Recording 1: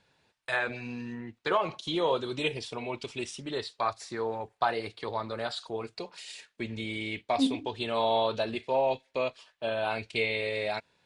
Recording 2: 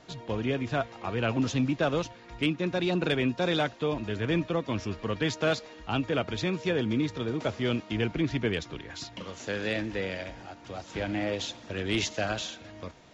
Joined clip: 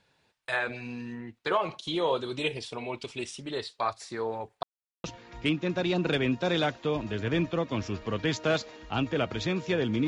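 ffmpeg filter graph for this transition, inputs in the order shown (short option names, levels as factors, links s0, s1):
-filter_complex "[0:a]apad=whole_dur=10.07,atrim=end=10.07,asplit=2[s0][s1];[s0]atrim=end=4.63,asetpts=PTS-STARTPTS,afade=t=out:st=4.626:d=0.004:c=hsin[s2];[s1]atrim=start=4.63:end=5.04,asetpts=PTS-STARTPTS,volume=0[s3];[1:a]atrim=start=2.01:end=7.04,asetpts=PTS-STARTPTS,afade=t=in:d=0.004:c=hsin[s4];[s2][s3][s4]concat=n=3:v=0:a=1"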